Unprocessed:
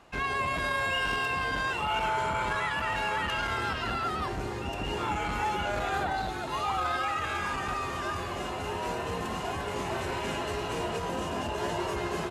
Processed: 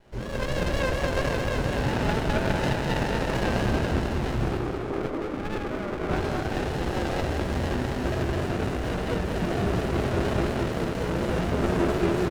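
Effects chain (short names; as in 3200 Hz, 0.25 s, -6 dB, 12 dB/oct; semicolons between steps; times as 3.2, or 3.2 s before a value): random spectral dropouts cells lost 34%; reverb RT60 1.5 s, pre-delay 16 ms, DRR -5 dB; vibrato 4.2 Hz 72 cents; 4.57–6.11 Chebyshev band-pass 270–1100 Hz, order 4; feedback echo 0.207 s, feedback 48%, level -6 dB; running maximum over 33 samples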